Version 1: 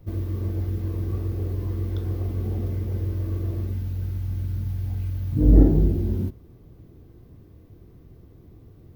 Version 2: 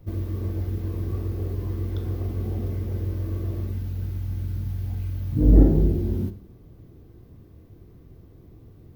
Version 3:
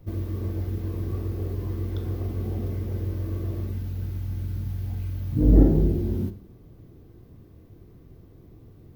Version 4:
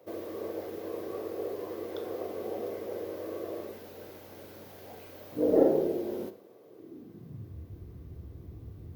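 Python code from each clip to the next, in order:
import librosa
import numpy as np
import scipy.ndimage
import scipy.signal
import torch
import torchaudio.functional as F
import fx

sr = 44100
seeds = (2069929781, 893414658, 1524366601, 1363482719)

y1 = fx.rev_schroeder(x, sr, rt60_s=0.56, comb_ms=28, drr_db=12.0)
y2 = fx.peak_eq(y1, sr, hz=63.0, db=-3.0, octaves=0.95)
y3 = fx.filter_sweep_highpass(y2, sr, from_hz=520.0, to_hz=66.0, start_s=6.64, end_s=7.68, q=3.2)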